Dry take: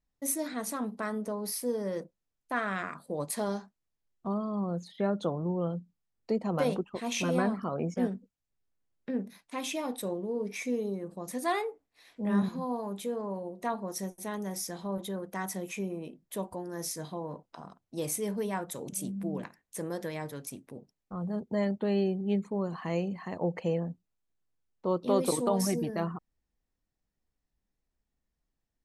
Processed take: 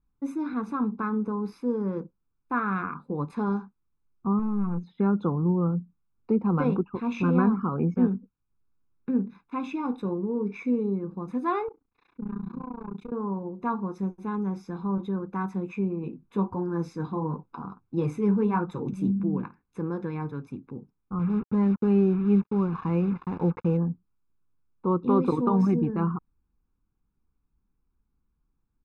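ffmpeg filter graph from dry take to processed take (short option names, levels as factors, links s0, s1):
-filter_complex "[0:a]asettb=1/sr,asplit=3[s0][s1][s2];[s0]atrim=end=4.394[s3];[s1]atrim=start=4.39:end=4.84,asetpts=PTS-STARTPTS,afade=t=in:d=0.004:c=qsin,afade=t=out:st=0.446:d=0.004:c=qsin,aecho=1:1:4.4:0.55,atrim=end_sample=19845,aeval=exprs='(tanh(39.8*val(0)+0.65)-tanh(0.65))/39.8':c=same[s4];[s2]atrim=start=4.836[s5];[s3][s4]acrossfade=d=0.004:c1=hsin:c2=qsin[s6];[s6][s5]acrossfade=d=0.004:c1=qsin:c2=hsin,asettb=1/sr,asplit=3[s7][s8][s9];[s7]atrim=end=11.684[s10];[s8]atrim=start=11.68:end=13.12,asetpts=PTS-STARTPTS,afade=t=in:d=0.004:c=qsin,afade=t=out:st=1.436:d=0.004:c=qsin,tremolo=f=29:d=0.974,acompressor=threshold=0.0158:ratio=12:attack=3.2:release=140:knee=1:detection=peak,aeval=exprs='clip(val(0),-1,0.0106)':c=same[s11];[s9]atrim=start=13.116[s12];[s10][s11]acrossfade=d=0.004:c1=hsin:c2=qsin[s13];[s13][s12]acrossfade=d=0.004:c1=qsin:c2=hsin,asettb=1/sr,asplit=3[s14][s15][s16];[s14]atrim=end=16.034[s17];[s15]atrim=start=16.03:end=19.2,asetpts=PTS-STARTPTS,afade=t=in:d=0.004:c=qsin,afade=t=out:st=3.166:d=0.004:c=qsin,acontrast=77,flanger=delay=4.5:depth=6.3:regen=-40:speed=1.5:shape=triangular[s18];[s16]atrim=start=19.196[s19];[s17][s18]acrossfade=d=0.004:c1=hsin:c2=qsin[s20];[s20][s19]acrossfade=d=0.004:c1=qsin:c2=hsin,asettb=1/sr,asplit=3[s21][s22][s23];[s21]atrim=end=21.194[s24];[s22]atrim=start=21.19:end=23.77,asetpts=PTS-STARTPTS,afade=t=in:d=0.004:c=qsin,afade=t=out:st=2.576:d=0.004:c=qsin,agate=range=0.0224:threshold=0.00794:ratio=3:release=100:detection=peak,acrusher=bits=6:mix=0:aa=0.5[s25];[s23]atrim=start=23.766[s26];[s24][s25]acrossfade=d=0.004:c1=hsin:c2=qsin[s27];[s27][s26]acrossfade=d=0.004:c1=qsin:c2=hsin,lowpass=1300,aecho=1:1:0.8:0.92,volume=1.58"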